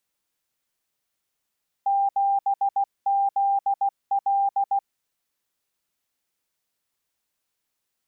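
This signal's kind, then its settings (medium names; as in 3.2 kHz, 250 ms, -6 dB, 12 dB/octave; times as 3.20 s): Morse "7ZL" 16 wpm 794 Hz -18.5 dBFS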